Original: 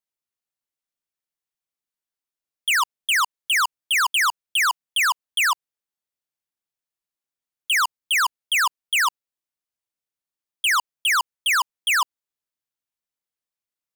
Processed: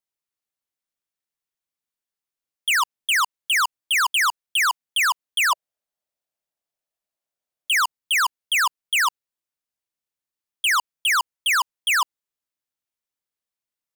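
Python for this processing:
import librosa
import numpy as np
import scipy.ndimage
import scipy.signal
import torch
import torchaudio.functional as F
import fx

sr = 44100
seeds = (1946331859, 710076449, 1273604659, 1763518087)

y = fx.peak_eq(x, sr, hz=630.0, db=11.0, octaves=0.59, at=(5.5, 7.8))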